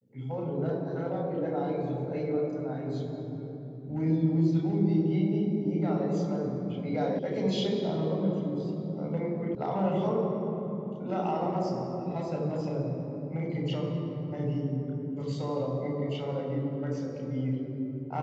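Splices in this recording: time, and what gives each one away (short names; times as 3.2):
7.19 sound cut off
9.55 sound cut off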